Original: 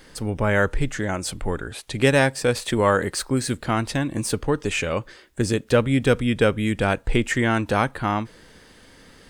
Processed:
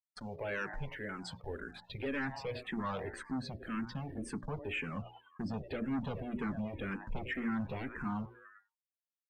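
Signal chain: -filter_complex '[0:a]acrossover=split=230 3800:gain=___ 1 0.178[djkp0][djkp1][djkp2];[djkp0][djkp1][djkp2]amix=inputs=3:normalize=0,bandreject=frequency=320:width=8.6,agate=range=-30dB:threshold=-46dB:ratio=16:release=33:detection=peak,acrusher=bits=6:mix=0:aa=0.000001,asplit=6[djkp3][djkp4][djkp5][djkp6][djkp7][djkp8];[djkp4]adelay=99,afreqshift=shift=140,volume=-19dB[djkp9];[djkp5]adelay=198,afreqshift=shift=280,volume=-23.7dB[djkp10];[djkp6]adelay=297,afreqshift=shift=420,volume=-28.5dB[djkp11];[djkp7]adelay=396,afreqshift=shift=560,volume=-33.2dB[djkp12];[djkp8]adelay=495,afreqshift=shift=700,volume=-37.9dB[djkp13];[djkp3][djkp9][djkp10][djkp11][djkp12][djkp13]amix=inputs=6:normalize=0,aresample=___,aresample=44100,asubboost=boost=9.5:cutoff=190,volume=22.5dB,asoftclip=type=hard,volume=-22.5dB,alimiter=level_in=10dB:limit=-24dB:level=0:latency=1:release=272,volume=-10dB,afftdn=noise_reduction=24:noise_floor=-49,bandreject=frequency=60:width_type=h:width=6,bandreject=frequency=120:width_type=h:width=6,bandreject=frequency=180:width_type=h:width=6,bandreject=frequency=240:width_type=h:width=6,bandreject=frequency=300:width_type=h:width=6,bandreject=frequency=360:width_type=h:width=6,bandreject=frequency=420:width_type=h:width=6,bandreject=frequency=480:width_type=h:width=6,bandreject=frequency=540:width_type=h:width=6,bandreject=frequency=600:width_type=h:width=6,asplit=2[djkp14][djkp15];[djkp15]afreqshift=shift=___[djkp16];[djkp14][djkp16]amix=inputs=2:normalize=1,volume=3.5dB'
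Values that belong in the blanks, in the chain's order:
0.1, 32000, -1.9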